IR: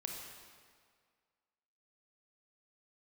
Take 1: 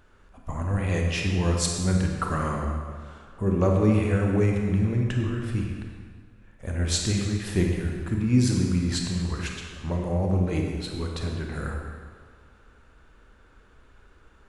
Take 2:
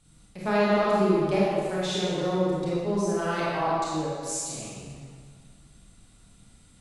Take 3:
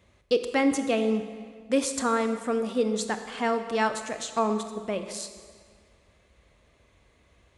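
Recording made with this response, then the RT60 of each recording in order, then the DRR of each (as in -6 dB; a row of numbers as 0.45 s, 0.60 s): 1; 1.9 s, 1.9 s, 1.9 s; 0.5 dB, -8.0 dB, 8.0 dB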